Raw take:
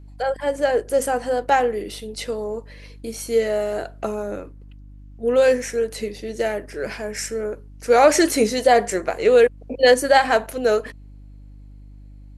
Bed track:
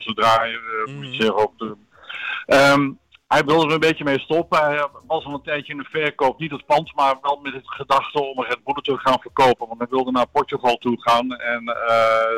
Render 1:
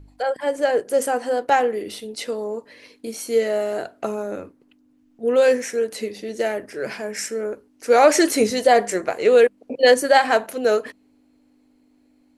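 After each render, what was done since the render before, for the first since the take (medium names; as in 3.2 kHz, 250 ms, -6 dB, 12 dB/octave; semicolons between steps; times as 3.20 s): de-hum 50 Hz, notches 4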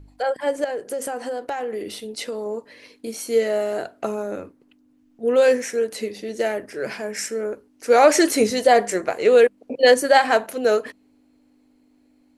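0.64–2.46 s: compression, threshold -24 dBFS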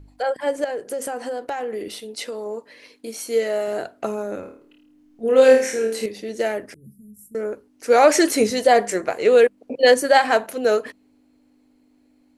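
1.88–3.68 s: bass shelf 210 Hz -8 dB; 4.40–6.06 s: flutter echo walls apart 4.6 m, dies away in 0.46 s; 6.74–7.35 s: inverse Chebyshev band-stop 850–3400 Hz, stop band 80 dB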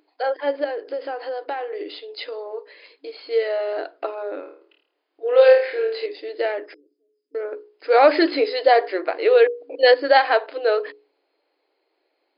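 hum notches 60/120/180/240/300/360/420/480 Hz; FFT band-pass 270–5100 Hz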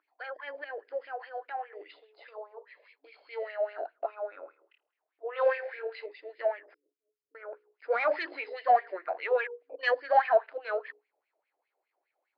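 single-diode clipper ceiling -7 dBFS; wah-wah 4.9 Hz 610–2400 Hz, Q 4.9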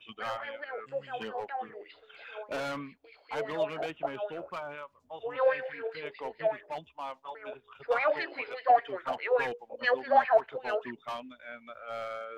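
add bed track -22 dB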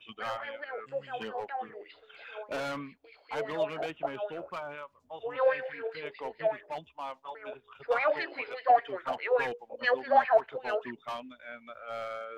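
no audible change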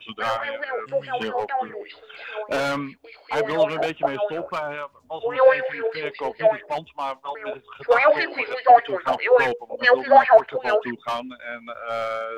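trim +11 dB; peak limiter -3 dBFS, peak gain reduction 2.5 dB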